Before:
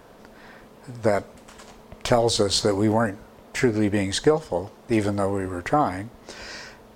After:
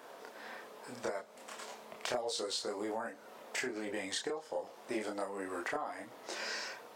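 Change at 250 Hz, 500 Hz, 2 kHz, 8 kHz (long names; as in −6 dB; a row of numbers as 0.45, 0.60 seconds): −19.5, −16.0, −9.0, −11.5 decibels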